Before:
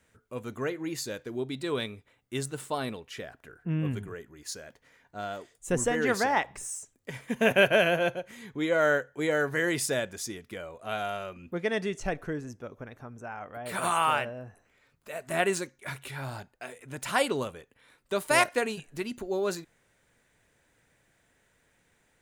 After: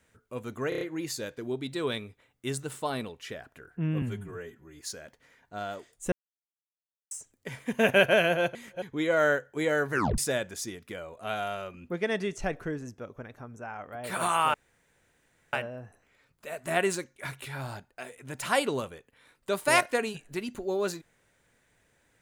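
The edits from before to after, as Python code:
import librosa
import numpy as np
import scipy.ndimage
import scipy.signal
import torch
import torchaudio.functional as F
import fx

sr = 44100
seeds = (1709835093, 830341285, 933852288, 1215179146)

y = fx.edit(x, sr, fx.stutter(start_s=0.69, slice_s=0.03, count=5),
    fx.stretch_span(start_s=3.9, length_s=0.52, factor=1.5),
    fx.silence(start_s=5.74, length_s=0.99),
    fx.reverse_span(start_s=8.17, length_s=0.27),
    fx.tape_stop(start_s=9.55, length_s=0.25),
    fx.insert_room_tone(at_s=14.16, length_s=0.99), tone=tone)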